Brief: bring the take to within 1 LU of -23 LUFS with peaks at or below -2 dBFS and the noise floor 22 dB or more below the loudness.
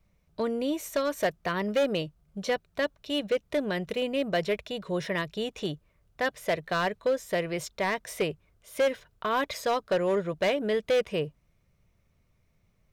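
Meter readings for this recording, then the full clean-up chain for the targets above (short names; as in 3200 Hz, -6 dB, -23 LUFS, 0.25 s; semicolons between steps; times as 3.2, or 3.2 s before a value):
clipped 1.5%; flat tops at -20.0 dBFS; loudness -29.5 LUFS; peak -20.0 dBFS; loudness target -23.0 LUFS
-> clip repair -20 dBFS; gain +6.5 dB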